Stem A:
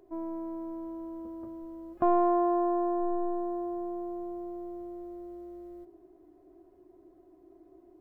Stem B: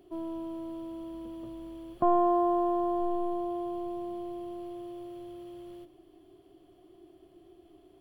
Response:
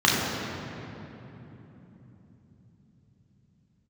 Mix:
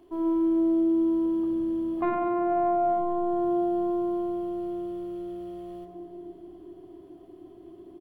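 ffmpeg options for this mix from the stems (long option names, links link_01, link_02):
-filter_complex "[0:a]volume=-5.5dB,asplit=2[link_01][link_02];[link_02]volume=-8.5dB[link_03];[1:a]aeval=exprs='0.2*sin(PI/2*1.78*val(0)/0.2)':channel_layout=same,adelay=1.6,volume=-10dB[link_04];[2:a]atrim=start_sample=2205[link_05];[link_03][link_05]afir=irnorm=-1:irlink=0[link_06];[link_01][link_04][link_06]amix=inputs=3:normalize=0,alimiter=limit=-19dB:level=0:latency=1"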